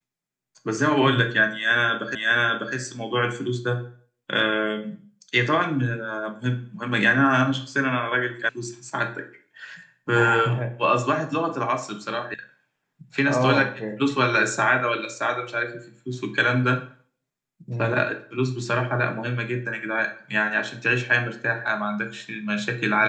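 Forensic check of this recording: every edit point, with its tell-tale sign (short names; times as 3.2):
2.15 repeat of the last 0.6 s
8.49 sound cut off
12.34 sound cut off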